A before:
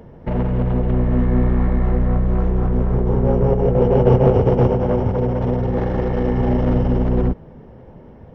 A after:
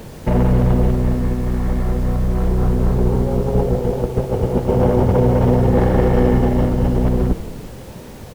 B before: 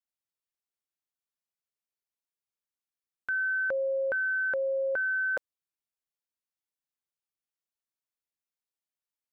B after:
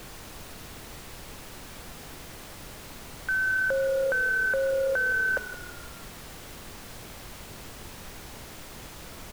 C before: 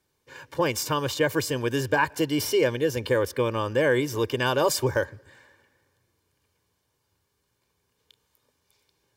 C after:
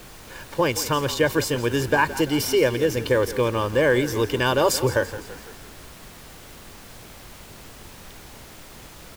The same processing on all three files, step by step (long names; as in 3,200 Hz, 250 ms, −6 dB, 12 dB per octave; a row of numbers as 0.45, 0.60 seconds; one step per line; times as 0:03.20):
compressor whose output falls as the input rises −18 dBFS, ratio −0.5
background noise pink −46 dBFS
echo with shifted repeats 168 ms, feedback 54%, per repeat −36 Hz, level −14.5 dB
level +3 dB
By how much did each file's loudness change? +0.5, +3.0, +3.0 LU